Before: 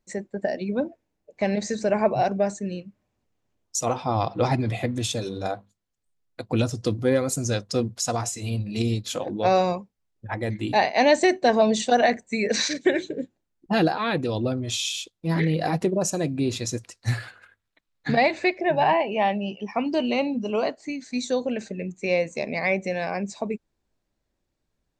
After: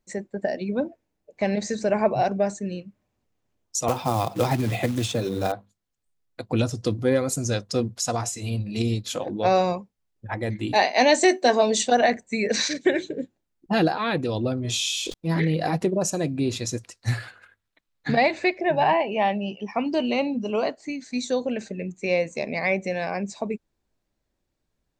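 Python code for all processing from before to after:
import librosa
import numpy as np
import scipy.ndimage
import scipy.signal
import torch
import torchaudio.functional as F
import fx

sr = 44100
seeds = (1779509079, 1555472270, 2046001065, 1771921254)

y = fx.chain(x, sr, fx.quant_float(bits=2),
    fx.band_squash(depth_pct=70), at=(3.88, 5.52))
y = fx.chain(y, sr, fx.highpass(hz=210.0, slope=24),
    fx.high_shelf(hz=5800.0, db=11.0),
    fx.doubler(ms=16.0, db=-11), at=(10.74, 11.83))
y = fx.chain(y, sr, fx.doubler(ms=24.0, db=-4.5),
    fx.sustainer(db_per_s=24.0), at=(14.62, 15.14))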